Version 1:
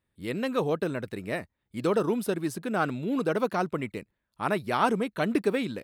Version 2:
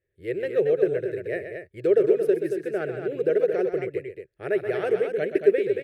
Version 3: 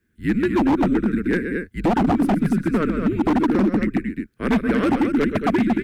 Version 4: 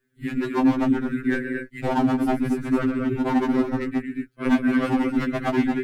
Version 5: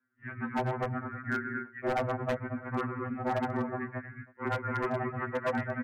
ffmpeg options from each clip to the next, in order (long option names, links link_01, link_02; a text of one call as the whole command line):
ffmpeg -i in.wav -filter_complex "[0:a]firequalizer=gain_entry='entry(130,0);entry(240,-19);entry(380,12);entry(610,3);entry(970,-24);entry(1700,4);entry(3700,-11)':delay=0.05:min_phase=1,asplit=2[link_01][link_02];[link_02]aecho=0:1:128.3|227.4:0.355|0.447[link_03];[link_01][link_03]amix=inputs=2:normalize=0,volume=-2dB" out.wav
ffmpeg -i in.wav -filter_complex "[0:a]asplit=2[link_01][link_02];[link_02]acompressor=threshold=-32dB:ratio=5,volume=2.5dB[link_03];[link_01][link_03]amix=inputs=2:normalize=0,afreqshift=-170,aeval=exprs='0.15*(abs(mod(val(0)/0.15+3,4)-2)-1)':channel_layout=same,volume=4.5dB" out.wav
ffmpeg -i in.wav -af "afftfilt=real='re*2.45*eq(mod(b,6),0)':imag='im*2.45*eq(mod(b,6),0)':win_size=2048:overlap=0.75" out.wav
ffmpeg -i in.wav -filter_complex "[0:a]asplit=2[link_01][link_02];[link_02]adelay=320,highpass=300,lowpass=3400,asoftclip=type=hard:threshold=-19dB,volume=-21dB[link_03];[link_01][link_03]amix=inputs=2:normalize=0,highpass=frequency=400:width_type=q:width=0.5412,highpass=frequency=400:width_type=q:width=1.307,lowpass=frequency=2100:width_type=q:width=0.5176,lowpass=frequency=2100:width_type=q:width=0.7071,lowpass=frequency=2100:width_type=q:width=1.932,afreqshift=-140,aeval=exprs='0.0944*(abs(mod(val(0)/0.0944+3,4)-2)-1)':channel_layout=same,volume=-2.5dB" out.wav